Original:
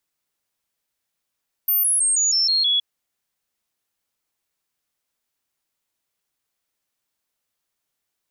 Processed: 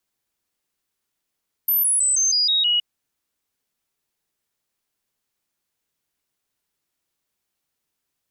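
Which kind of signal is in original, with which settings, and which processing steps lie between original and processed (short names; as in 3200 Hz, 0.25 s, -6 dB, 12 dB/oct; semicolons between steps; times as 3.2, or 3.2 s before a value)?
stepped sine 13500 Hz down, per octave 3, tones 7, 0.16 s, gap 0.00 s -16 dBFS
frequency shift -470 Hz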